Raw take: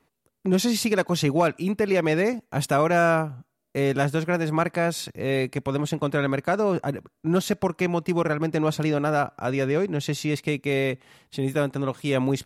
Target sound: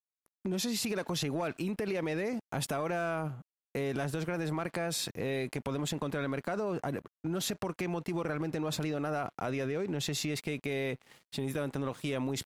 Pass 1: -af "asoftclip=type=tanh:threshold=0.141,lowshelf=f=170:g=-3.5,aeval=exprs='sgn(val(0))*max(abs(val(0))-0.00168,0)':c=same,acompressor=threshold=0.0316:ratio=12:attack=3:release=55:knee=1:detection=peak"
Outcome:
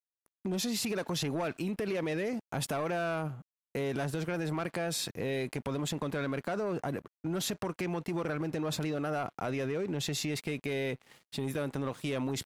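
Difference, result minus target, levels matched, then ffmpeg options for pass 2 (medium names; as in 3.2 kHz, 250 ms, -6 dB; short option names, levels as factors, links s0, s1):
saturation: distortion +12 dB
-af "asoftclip=type=tanh:threshold=0.335,lowshelf=f=170:g=-3.5,aeval=exprs='sgn(val(0))*max(abs(val(0))-0.00168,0)':c=same,acompressor=threshold=0.0316:ratio=12:attack=3:release=55:knee=1:detection=peak"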